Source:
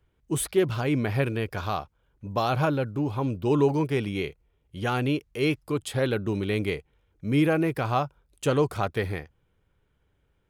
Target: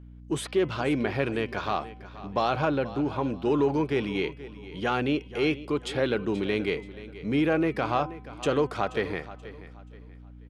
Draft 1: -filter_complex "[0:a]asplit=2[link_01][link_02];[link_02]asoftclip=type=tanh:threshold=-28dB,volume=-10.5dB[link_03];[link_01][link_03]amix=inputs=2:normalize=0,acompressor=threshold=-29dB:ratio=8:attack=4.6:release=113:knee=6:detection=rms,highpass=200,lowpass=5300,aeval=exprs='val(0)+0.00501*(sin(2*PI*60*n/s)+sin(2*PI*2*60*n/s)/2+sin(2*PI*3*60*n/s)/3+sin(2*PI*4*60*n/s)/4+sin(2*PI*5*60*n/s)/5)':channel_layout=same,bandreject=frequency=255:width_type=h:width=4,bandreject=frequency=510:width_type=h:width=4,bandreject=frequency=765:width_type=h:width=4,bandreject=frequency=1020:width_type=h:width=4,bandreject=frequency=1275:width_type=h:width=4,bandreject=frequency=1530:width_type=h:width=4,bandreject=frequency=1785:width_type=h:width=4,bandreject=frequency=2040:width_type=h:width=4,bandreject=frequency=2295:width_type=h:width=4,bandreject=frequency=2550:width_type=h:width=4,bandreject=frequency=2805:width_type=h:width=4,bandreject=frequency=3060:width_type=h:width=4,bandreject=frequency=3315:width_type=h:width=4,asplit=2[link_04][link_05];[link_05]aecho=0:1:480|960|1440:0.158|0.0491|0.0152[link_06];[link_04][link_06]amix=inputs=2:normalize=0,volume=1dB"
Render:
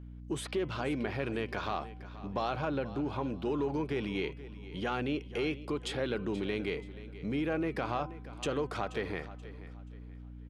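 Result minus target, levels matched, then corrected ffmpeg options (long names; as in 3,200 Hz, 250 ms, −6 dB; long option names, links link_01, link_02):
downward compressor: peak gain reduction +9.5 dB
-filter_complex "[0:a]asplit=2[link_01][link_02];[link_02]asoftclip=type=tanh:threshold=-28dB,volume=-10.5dB[link_03];[link_01][link_03]amix=inputs=2:normalize=0,acompressor=threshold=-18dB:ratio=8:attack=4.6:release=113:knee=6:detection=rms,highpass=200,lowpass=5300,aeval=exprs='val(0)+0.00501*(sin(2*PI*60*n/s)+sin(2*PI*2*60*n/s)/2+sin(2*PI*3*60*n/s)/3+sin(2*PI*4*60*n/s)/4+sin(2*PI*5*60*n/s)/5)':channel_layout=same,bandreject=frequency=255:width_type=h:width=4,bandreject=frequency=510:width_type=h:width=4,bandreject=frequency=765:width_type=h:width=4,bandreject=frequency=1020:width_type=h:width=4,bandreject=frequency=1275:width_type=h:width=4,bandreject=frequency=1530:width_type=h:width=4,bandreject=frequency=1785:width_type=h:width=4,bandreject=frequency=2040:width_type=h:width=4,bandreject=frequency=2295:width_type=h:width=4,bandreject=frequency=2550:width_type=h:width=4,bandreject=frequency=2805:width_type=h:width=4,bandreject=frequency=3060:width_type=h:width=4,bandreject=frequency=3315:width_type=h:width=4,asplit=2[link_04][link_05];[link_05]aecho=0:1:480|960|1440:0.158|0.0491|0.0152[link_06];[link_04][link_06]amix=inputs=2:normalize=0,volume=1dB"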